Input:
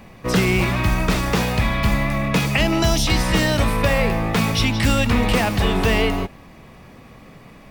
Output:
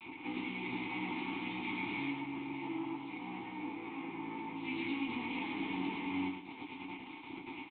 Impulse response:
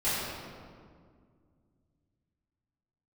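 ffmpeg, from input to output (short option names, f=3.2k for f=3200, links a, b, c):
-filter_complex "[0:a]highpass=f=150:w=0.5412,highpass=f=150:w=1.3066,lowshelf=f=250:g=9,acompressor=threshold=-30dB:ratio=5,alimiter=level_in=4dB:limit=-24dB:level=0:latency=1:release=122,volume=-4dB,acrusher=bits=3:dc=4:mix=0:aa=0.000001,crystalizer=i=5.5:c=0,asettb=1/sr,asplit=3[a][b][c];[a]atrim=end=2.084[d];[b]atrim=start=2.08:end=4.64,asetpts=PTS-STARTPTS,afade=t=in:d=0.004:c=qsin,afade=t=out:st=2.556:d=0.004:c=qsin,asplit=2[e][f];[f]highpass=f=720:p=1,volume=9dB,asoftclip=type=tanh:threshold=-12.5dB[g];[e][g]amix=inputs=2:normalize=0,lowpass=f=1k:p=1,volume=-6dB[h];[c]atrim=start=4.636[i];[d][h]acrossfade=d=0.004:c1=hsin:c2=qsin[j];[j][i]acrossfade=d=0.004:c1=qsin:c2=hsin,asplit=3[k][l][m];[k]bandpass=f=300:t=q:w=8,volume=0dB[n];[l]bandpass=f=870:t=q:w=8,volume=-6dB[o];[m]bandpass=f=2.24k:t=q:w=8,volume=-9dB[p];[n][o][p]amix=inputs=3:normalize=0,aecho=1:1:108|655:0.562|0.251[q];[1:a]atrim=start_sample=2205,atrim=end_sample=4410,asetrate=88200,aresample=44100[r];[q][r]afir=irnorm=-1:irlink=0,aresample=8000,aresample=44100,volume=7dB"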